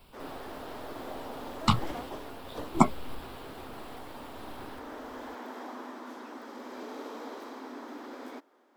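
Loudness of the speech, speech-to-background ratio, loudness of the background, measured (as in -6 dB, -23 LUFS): -28.5 LUFS, 14.5 dB, -43.0 LUFS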